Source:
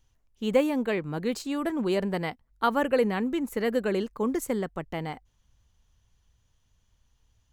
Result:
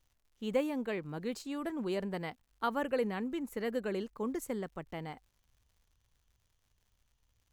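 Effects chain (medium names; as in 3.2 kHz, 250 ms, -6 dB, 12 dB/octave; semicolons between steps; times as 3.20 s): crackle 160 per s -52 dBFS; trim -8.5 dB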